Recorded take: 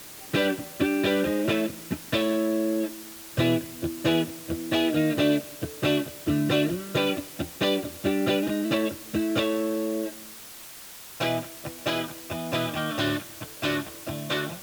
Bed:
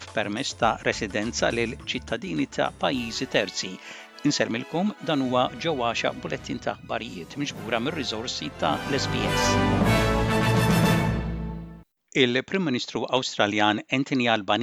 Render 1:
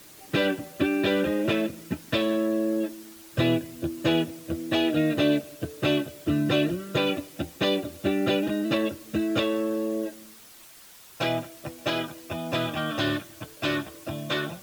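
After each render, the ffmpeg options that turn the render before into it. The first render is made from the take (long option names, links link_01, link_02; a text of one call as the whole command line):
ffmpeg -i in.wav -af "afftdn=noise_reduction=7:noise_floor=-44" out.wav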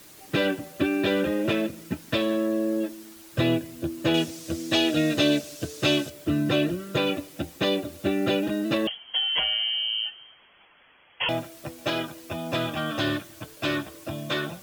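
ffmpeg -i in.wav -filter_complex "[0:a]asettb=1/sr,asplit=3[link_01][link_02][link_03];[link_01]atrim=end=4.144[link_04];[link_02]atrim=start=4.14:end=6.1,asetpts=PTS-STARTPTS,afade=type=in:duration=0.004:curve=qsin,afade=type=out:start_time=1.956:duration=0.004:curve=qsin,equalizer=frequency=5800:width=0.74:gain=11.5[link_05];[link_03]atrim=start=6.096[link_06];[link_04][link_05]acrossfade=duration=0.004:curve1=hsin:curve2=qsin[link_07];[link_07][link_06]acrossfade=duration=0.004:curve1=qsin:curve2=hsin,asettb=1/sr,asplit=3[link_08][link_09][link_10];[link_08]atrim=end=8.874[link_11];[link_09]atrim=start=8.87:end=11.29,asetpts=PTS-STARTPTS,afade=type=in:duration=0.004:curve=qsin,afade=type=out:start_time=2.416:duration=0.004:curve=qsin,lowpass=frequency=2900:width_type=q:width=0.5098,lowpass=frequency=2900:width_type=q:width=0.6013,lowpass=frequency=2900:width_type=q:width=0.9,lowpass=frequency=2900:width_type=q:width=2.563,afreqshift=-3400[link_12];[link_10]atrim=start=11.286[link_13];[link_11][link_12]acrossfade=duration=0.004:curve1=hsin:curve2=qsin[link_14];[link_14][link_13]acrossfade=duration=0.004:curve1=qsin:curve2=hsin" out.wav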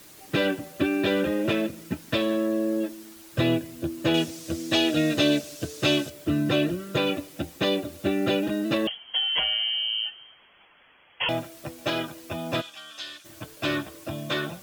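ffmpeg -i in.wav -filter_complex "[0:a]asplit=3[link_01][link_02][link_03];[link_01]afade=type=out:start_time=12.6:duration=0.02[link_04];[link_02]bandpass=frequency=5800:width_type=q:width=1.2,afade=type=in:start_time=12.6:duration=0.02,afade=type=out:start_time=13.24:duration=0.02[link_05];[link_03]afade=type=in:start_time=13.24:duration=0.02[link_06];[link_04][link_05][link_06]amix=inputs=3:normalize=0" out.wav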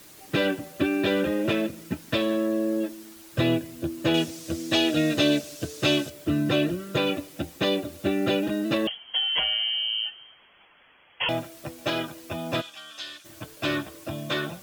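ffmpeg -i in.wav -af anull out.wav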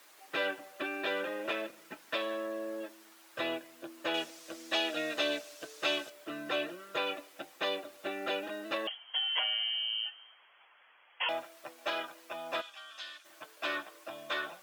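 ffmpeg -i in.wav -af "highpass=840,highshelf=frequency=2600:gain=-12" out.wav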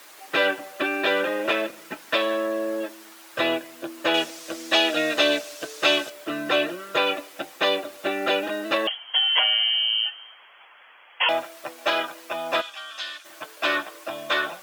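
ffmpeg -i in.wav -af "volume=11.5dB" out.wav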